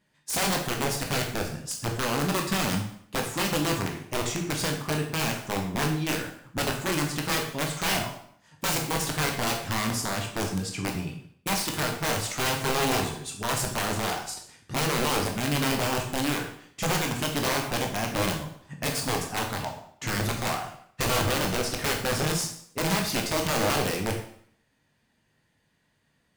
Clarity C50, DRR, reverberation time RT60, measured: 6.5 dB, 1.5 dB, 0.60 s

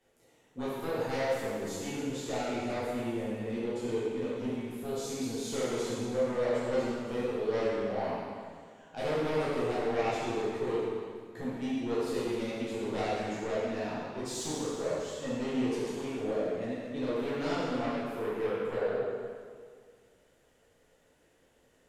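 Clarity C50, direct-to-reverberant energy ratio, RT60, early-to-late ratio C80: -3.5 dB, -10.0 dB, 1.9 s, -1.0 dB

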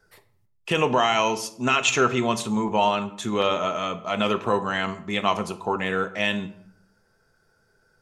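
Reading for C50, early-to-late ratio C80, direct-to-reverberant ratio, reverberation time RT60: 14.0 dB, 17.5 dB, 9.0 dB, 0.65 s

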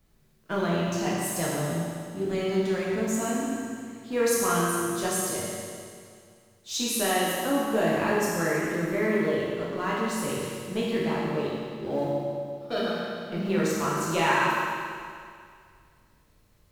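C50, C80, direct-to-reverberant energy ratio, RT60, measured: -2.0 dB, -0.5 dB, -6.5 dB, 2.2 s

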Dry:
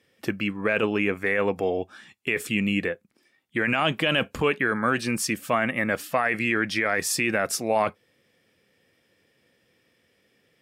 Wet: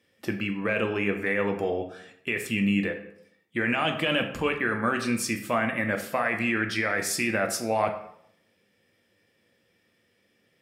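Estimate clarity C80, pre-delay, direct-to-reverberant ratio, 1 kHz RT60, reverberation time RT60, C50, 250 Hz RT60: 12.0 dB, 3 ms, 4.5 dB, 0.70 s, 0.75 s, 9.5 dB, 0.75 s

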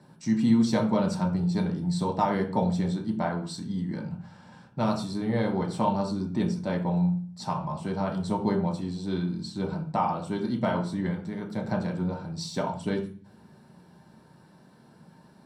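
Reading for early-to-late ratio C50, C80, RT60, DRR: 8.5 dB, 13.0 dB, 0.40 s, -1.0 dB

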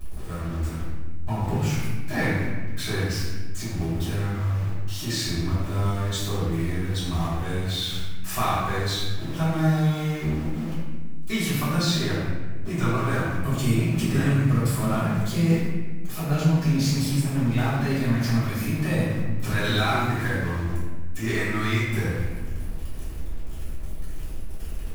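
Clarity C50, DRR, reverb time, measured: -1.5 dB, -12.0 dB, 1.4 s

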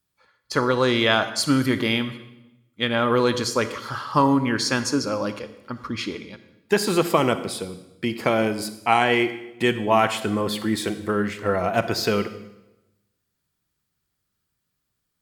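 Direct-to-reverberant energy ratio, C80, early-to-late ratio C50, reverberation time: 11.5 dB, 14.0 dB, 12.5 dB, 0.95 s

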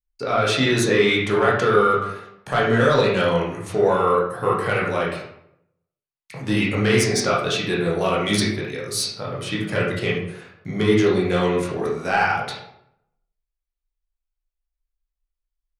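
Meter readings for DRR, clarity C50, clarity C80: -5.5 dB, 2.5 dB, 6.5 dB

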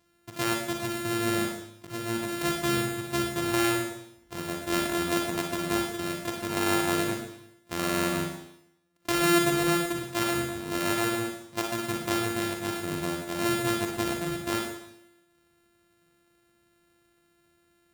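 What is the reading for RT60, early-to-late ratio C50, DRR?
0.75 s, 2.0 dB, 0.5 dB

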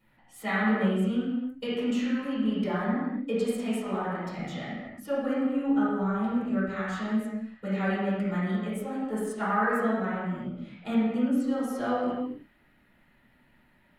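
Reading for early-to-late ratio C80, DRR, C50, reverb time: 0.5 dB, -12.5 dB, -3.0 dB, not exponential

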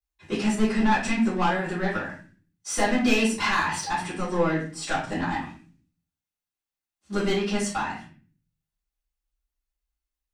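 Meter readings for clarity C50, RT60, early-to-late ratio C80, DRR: 5.0 dB, 0.40 s, 10.5 dB, -12.0 dB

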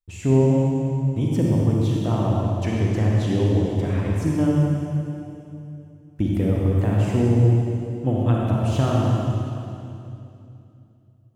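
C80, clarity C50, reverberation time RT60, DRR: -1.5 dB, -3.0 dB, 2.7 s, -3.5 dB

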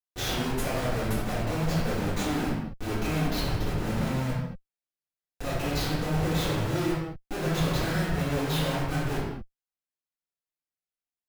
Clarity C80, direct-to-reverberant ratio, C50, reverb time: 3.0 dB, -10.5 dB, 0.0 dB, not exponential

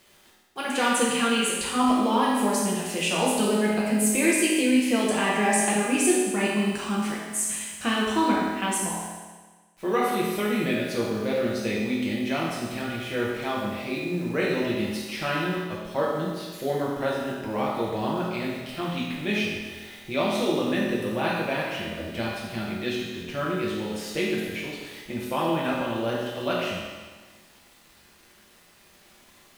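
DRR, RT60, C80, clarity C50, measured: -5.5 dB, 1.4 s, 2.0 dB, -0.5 dB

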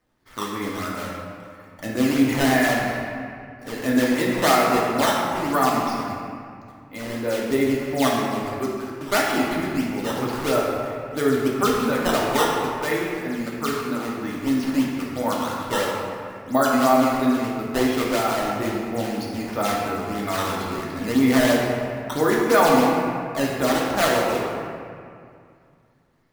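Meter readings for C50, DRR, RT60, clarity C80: -0.5 dB, -4.0 dB, 2.3 s, 1.0 dB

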